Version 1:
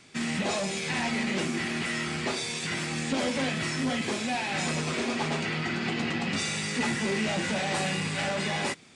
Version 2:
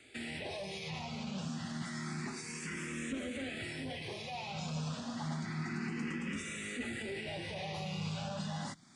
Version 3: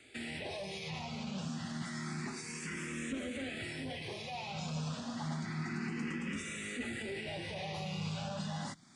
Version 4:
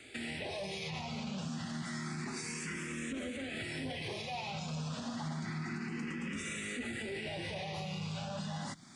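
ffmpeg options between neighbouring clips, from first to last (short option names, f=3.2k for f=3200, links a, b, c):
-filter_complex "[0:a]acrossover=split=200[a][b];[b]alimiter=level_in=5dB:limit=-24dB:level=0:latency=1:release=293,volume=-5dB[c];[a][c]amix=inputs=2:normalize=0,asplit=2[d][e];[e]afreqshift=0.29[f];[d][f]amix=inputs=2:normalize=1,volume=-2dB"
-af anull
-af "alimiter=level_in=12.5dB:limit=-24dB:level=0:latency=1:release=169,volume=-12.5dB,volume=5.5dB"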